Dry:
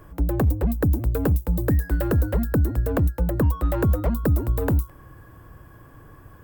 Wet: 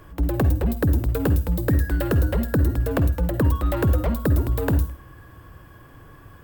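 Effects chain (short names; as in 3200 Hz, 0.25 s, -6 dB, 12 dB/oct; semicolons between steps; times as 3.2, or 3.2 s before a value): bell 3400 Hz +7 dB 1.6 oct; reverb RT60 0.40 s, pre-delay 46 ms, DRR 10.5 dB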